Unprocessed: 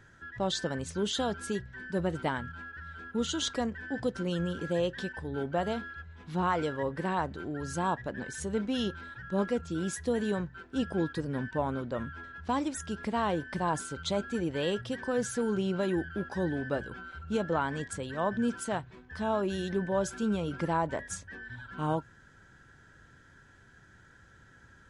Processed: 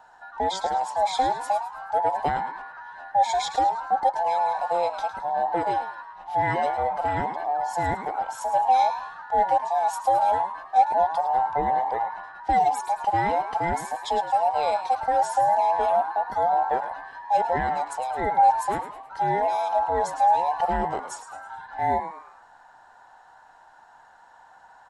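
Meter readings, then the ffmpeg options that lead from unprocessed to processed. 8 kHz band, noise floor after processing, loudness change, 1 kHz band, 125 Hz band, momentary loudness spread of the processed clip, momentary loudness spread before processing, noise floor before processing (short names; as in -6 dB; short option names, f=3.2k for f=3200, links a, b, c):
0.0 dB, -53 dBFS, +8.5 dB, +16.0 dB, -4.5 dB, 9 LU, 7 LU, -58 dBFS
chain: -filter_complex "[0:a]afftfilt=real='real(if(between(b,1,1008),(2*floor((b-1)/48)+1)*48-b,b),0)':imag='imag(if(between(b,1,1008),(2*floor((b-1)/48)+1)*48-b,b),0)*if(between(b,1,1008),-1,1)':win_size=2048:overlap=0.75,equalizer=f=770:t=o:w=0.42:g=13.5,asplit=5[a][b][c][d][e];[b]adelay=107,afreqshift=110,volume=-11dB[f];[c]adelay=214,afreqshift=220,volume=-19.2dB[g];[d]adelay=321,afreqshift=330,volume=-27.4dB[h];[e]adelay=428,afreqshift=440,volume=-35.5dB[i];[a][f][g][h][i]amix=inputs=5:normalize=0"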